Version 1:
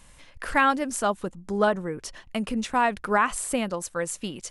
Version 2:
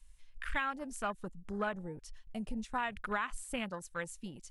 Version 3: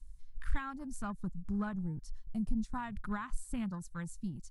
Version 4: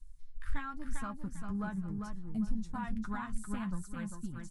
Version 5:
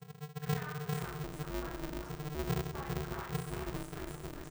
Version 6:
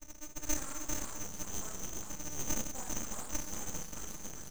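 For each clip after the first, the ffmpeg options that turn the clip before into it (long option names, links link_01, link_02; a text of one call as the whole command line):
ffmpeg -i in.wav -af "afwtdn=0.0251,equalizer=frequency=410:width=0.31:gain=-15,acompressor=threshold=-32dB:ratio=6,volume=1.5dB" out.wav
ffmpeg -i in.wav -af "firequalizer=gain_entry='entry(160,0);entry(490,-23);entry(950,-13);entry(2700,-24);entry(4300,-13)':delay=0.05:min_phase=1,volume=9dB" out.wav
ffmpeg -i in.wav -filter_complex "[0:a]asplit=2[link_01][link_02];[link_02]aecho=0:1:398|796|1194|1592:0.596|0.155|0.0403|0.0105[link_03];[link_01][link_03]amix=inputs=2:normalize=0,flanger=delay=8.1:depth=3:regen=42:speed=0.93:shape=triangular,volume=2.5dB" out.wav
ffmpeg -i in.wav -filter_complex "[0:a]asplit=2[link_01][link_02];[link_02]aecho=0:1:40|92|159.6|247.5|361.7:0.631|0.398|0.251|0.158|0.1[link_03];[link_01][link_03]amix=inputs=2:normalize=0,aeval=exprs='val(0)*sgn(sin(2*PI*150*n/s))':channel_layout=same,volume=-5.5dB" out.wav
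ffmpeg -i in.wav -af "afftfilt=real='real(if(lt(b,272),68*(eq(floor(b/68),0)*2+eq(floor(b/68),1)*3+eq(floor(b/68),2)*0+eq(floor(b/68),3)*1)+mod(b,68),b),0)':imag='imag(if(lt(b,272),68*(eq(floor(b/68),0)*2+eq(floor(b/68),1)*3+eq(floor(b/68),2)*0+eq(floor(b/68),3)*1)+mod(b,68),b),0)':win_size=2048:overlap=0.75,flanger=delay=6.2:depth=6.3:regen=-55:speed=1.8:shape=sinusoidal,aeval=exprs='abs(val(0))':channel_layout=same,volume=6dB" out.wav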